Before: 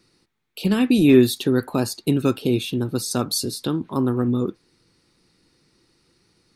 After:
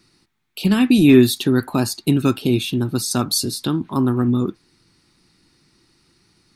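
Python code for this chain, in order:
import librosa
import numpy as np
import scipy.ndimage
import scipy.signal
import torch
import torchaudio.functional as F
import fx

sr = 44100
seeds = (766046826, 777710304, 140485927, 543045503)

y = fx.peak_eq(x, sr, hz=490.0, db=-9.0, octaves=0.51)
y = y * librosa.db_to_amplitude(4.0)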